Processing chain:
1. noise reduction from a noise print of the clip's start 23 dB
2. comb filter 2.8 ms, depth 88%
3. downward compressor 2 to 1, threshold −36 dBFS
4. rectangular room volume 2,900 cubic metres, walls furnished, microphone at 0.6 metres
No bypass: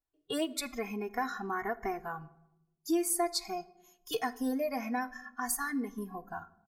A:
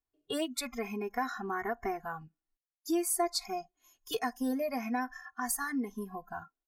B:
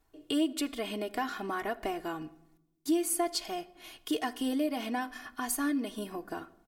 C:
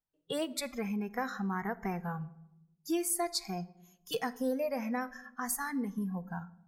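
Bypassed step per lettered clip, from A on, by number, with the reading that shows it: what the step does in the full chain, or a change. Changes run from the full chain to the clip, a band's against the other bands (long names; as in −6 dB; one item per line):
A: 4, echo-to-direct ratio −13.5 dB to none audible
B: 1, 250 Hz band +4.0 dB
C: 2, 125 Hz band +11.0 dB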